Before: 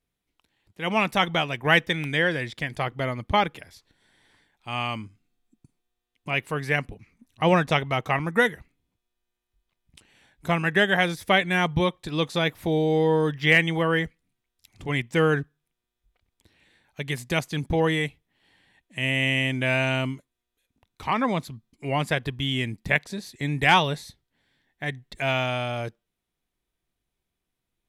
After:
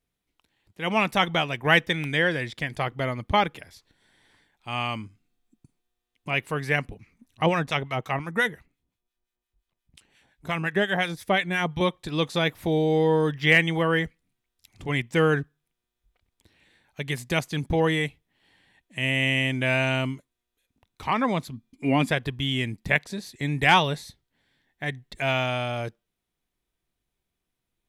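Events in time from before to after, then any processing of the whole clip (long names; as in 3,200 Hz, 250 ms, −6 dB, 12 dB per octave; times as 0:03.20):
0:07.46–0:11.81: two-band tremolo in antiphase 5.7 Hz, crossover 1,100 Hz
0:21.52–0:22.10: hollow resonant body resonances 260/2,400/3,400 Hz, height 10 dB → 14 dB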